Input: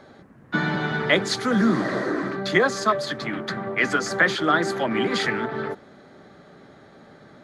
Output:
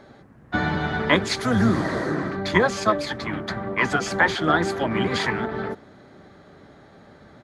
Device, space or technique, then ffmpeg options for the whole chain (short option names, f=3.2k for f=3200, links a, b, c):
octave pedal: -filter_complex "[0:a]asplit=2[a][b];[b]asetrate=22050,aresample=44100,atempo=2,volume=-5dB[c];[a][c]amix=inputs=2:normalize=0,asettb=1/sr,asplit=3[d][e][f];[d]atrim=end=1.414[g];[e]atrim=start=1.41:end=2.15,asetpts=PTS-STARTPTS,afade=t=in:d=0.004:c=qsin,afade=t=out:st=0.736:d=0.004:c=qsin,highshelf=f=9.6k:g=11[h];[f]atrim=start=2.146[i];[g][h]acrossfade=d=0.004:c1=hsin:c2=qsin[j];[j][i]acrossfade=d=0.004:c1=qsin:c2=hsin,volume=-1dB"